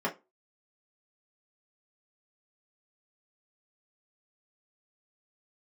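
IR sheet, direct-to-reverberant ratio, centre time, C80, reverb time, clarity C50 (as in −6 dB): −5.0 dB, 13 ms, 25.0 dB, 0.25 s, 16.0 dB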